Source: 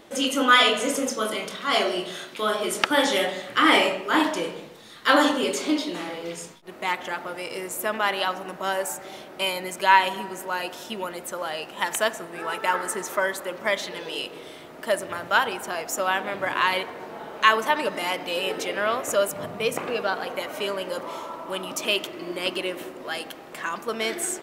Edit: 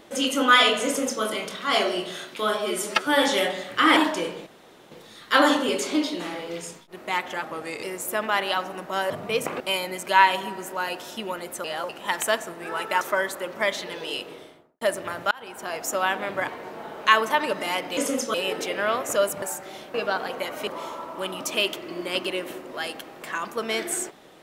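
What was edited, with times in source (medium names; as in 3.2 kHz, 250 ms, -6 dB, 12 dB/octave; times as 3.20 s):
0.86–1.23 s: copy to 18.33 s
2.58–3.01 s: stretch 1.5×
3.75–4.16 s: delete
4.66 s: insert room tone 0.45 s
7.17–7.54 s: speed 91%
8.81–9.33 s: swap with 19.41–19.91 s
11.37–11.62 s: reverse
12.74–13.06 s: delete
14.28–14.86 s: studio fade out
15.36–15.83 s: fade in
16.53–16.84 s: delete
20.64–20.98 s: delete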